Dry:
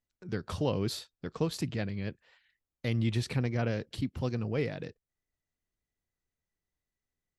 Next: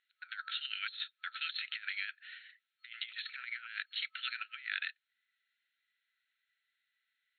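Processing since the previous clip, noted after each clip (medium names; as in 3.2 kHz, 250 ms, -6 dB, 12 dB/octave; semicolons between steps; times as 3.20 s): FFT band-pass 1.3–4.3 kHz; compressor with a negative ratio -50 dBFS, ratio -0.5; trim +10 dB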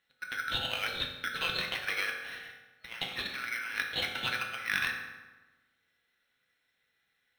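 in parallel at -7.5 dB: sample-and-hold 12×; on the sum: reverberation RT60 1.2 s, pre-delay 3 ms, DRR 0.5 dB; trim +4 dB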